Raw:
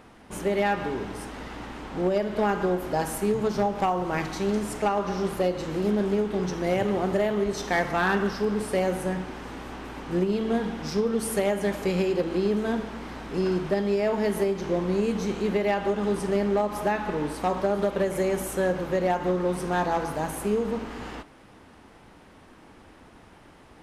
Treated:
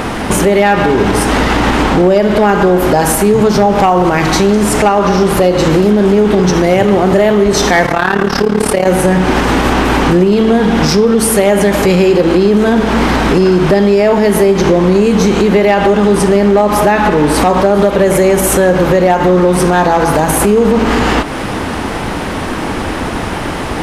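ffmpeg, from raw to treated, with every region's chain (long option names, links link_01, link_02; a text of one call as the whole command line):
ffmpeg -i in.wav -filter_complex "[0:a]asettb=1/sr,asplit=3[link_01][link_02][link_03];[link_01]atrim=end=7.864[link_04];[link_02]atrim=start=7.86:end=8.87,asetpts=PTS-STARTPTS,afade=type=in:duration=0.004:curve=qsin,afade=type=out:start_time=1.006:duration=0.004:curve=qsin,bass=frequency=250:gain=-3,treble=frequency=4000:gain=-1,tremolo=f=36:d=0.857[link_05];[link_03]atrim=start=8.866[link_06];[link_04][link_05]acrossfade=duration=0.004:curve1=hsin:curve2=qsin[link_07];[link_07][link_06]acrossfade=duration=0.004:curve1=qsin:curve2=hsin,acompressor=threshold=-41dB:ratio=3,alimiter=level_in=34.5dB:limit=-1dB:release=50:level=0:latency=1,volume=-1dB" out.wav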